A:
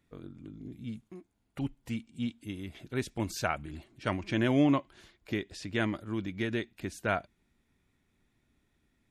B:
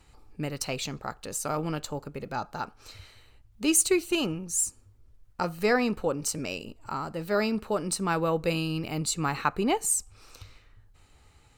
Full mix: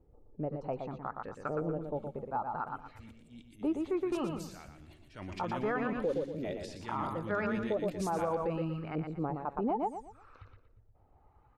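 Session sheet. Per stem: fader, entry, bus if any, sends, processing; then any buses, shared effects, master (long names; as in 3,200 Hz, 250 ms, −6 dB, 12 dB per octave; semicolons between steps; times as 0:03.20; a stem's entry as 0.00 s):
0:04.71 −16.5 dB → 0:05.19 −8 dB, 1.10 s, no send, echo send −7 dB, brickwall limiter −22.5 dBFS, peak gain reduction 8.5 dB; transient designer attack −7 dB, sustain +10 dB
−5.5 dB, 0.00 s, no send, echo send −6 dB, reverb reduction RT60 0.64 s; auto-filter low-pass saw up 0.67 Hz 450–1,600 Hz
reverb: not used
echo: repeating echo 118 ms, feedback 31%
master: brickwall limiter −24 dBFS, peak gain reduction 8.5 dB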